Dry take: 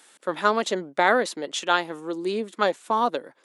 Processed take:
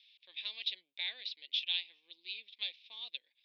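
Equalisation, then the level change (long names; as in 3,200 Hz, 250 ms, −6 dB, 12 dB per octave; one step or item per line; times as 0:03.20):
elliptic band-pass filter 2,400–5,200 Hz, stop band 40 dB
high-frequency loss of the air 260 metres
parametric band 3,700 Hz +8 dB 0.24 octaves
0.0 dB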